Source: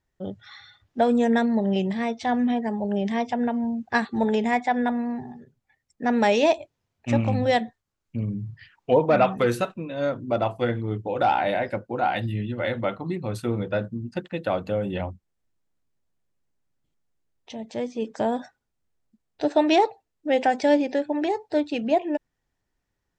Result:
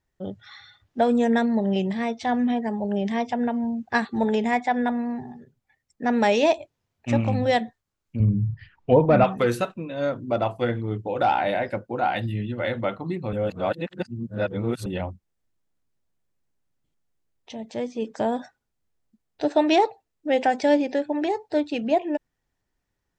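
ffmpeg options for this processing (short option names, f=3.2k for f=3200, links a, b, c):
-filter_complex "[0:a]asettb=1/sr,asplit=3[a][b][c];[a]atrim=end=8.204[d];[b]atrim=start=8.2:end=9.24,asetpts=PTS-STARTPTS,afade=t=in:d=0.004:c=qsin,afade=t=out:st=1.036:d=0.004:c=qsin,aemphasis=mode=reproduction:type=bsi[e];[c]atrim=start=9.236[f];[d][e]acrossfade=d=0.004:c1=hsin:c2=qsin[g];[g][f]acrossfade=d=0.004:c1=qsin:c2=hsin,asplit=3[h][i][j];[h]atrim=end=13.332[k];[i]atrim=start=13.328:end=14.862,asetpts=PTS-STARTPTS,areverse[l];[j]atrim=start=14.858[m];[k][l]acrossfade=d=0.004:c1=hsin:c2=hsin[n];[n][m]acrossfade=d=0.004:c1=hsin:c2=hsin"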